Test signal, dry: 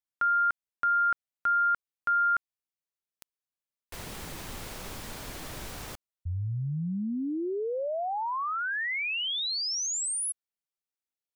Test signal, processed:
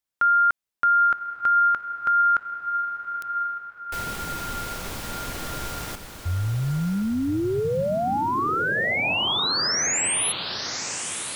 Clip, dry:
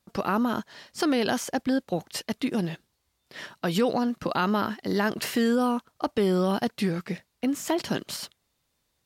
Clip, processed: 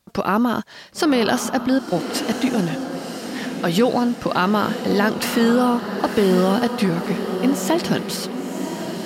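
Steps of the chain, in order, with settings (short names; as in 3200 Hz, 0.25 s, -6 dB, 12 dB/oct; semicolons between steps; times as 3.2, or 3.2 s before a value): diffused feedback echo 1.049 s, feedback 51%, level -7.5 dB; gain +6.5 dB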